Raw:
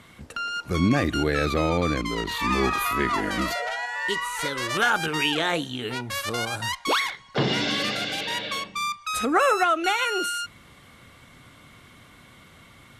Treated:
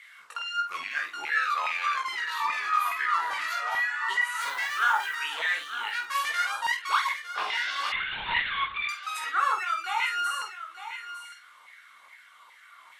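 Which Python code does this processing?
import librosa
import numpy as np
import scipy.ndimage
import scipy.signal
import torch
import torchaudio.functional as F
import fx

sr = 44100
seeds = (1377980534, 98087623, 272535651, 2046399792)

y = fx.rattle_buzz(x, sr, strikes_db=-23.0, level_db=-18.0)
y = fx.highpass(y, sr, hz=640.0, slope=12, at=(1.38, 2.12))
y = fx.rider(y, sr, range_db=4, speed_s=0.5)
y = fx.chorus_voices(y, sr, voices=4, hz=0.28, base_ms=20, depth_ms=1.5, mix_pct=45)
y = fx.filter_lfo_highpass(y, sr, shape='saw_down', hz=2.4, low_hz=880.0, high_hz=2100.0, q=4.8)
y = fx.quant_dither(y, sr, seeds[0], bits=8, dither='triangular', at=(4.41, 5.15))
y = fx.doubler(y, sr, ms=49.0, db=-8.5)
y = y + 10.0 ** (-11.0 / 20.0) * np.pad(y, (int(906 * sr / 1000.0), 0))[:len(y)]
y = fx.lpc_vocoder(y, sr, seeds[1], excitation='whisper', order=10, at=(7.92, 8.89))
y = F.gain(torch.from_numpy(y), -6.0).numpy()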